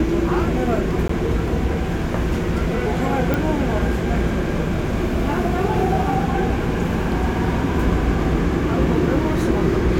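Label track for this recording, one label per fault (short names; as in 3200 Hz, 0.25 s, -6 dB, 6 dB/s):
1.080000	1.090000	gap 14 ms
3.340000	3.340000	pop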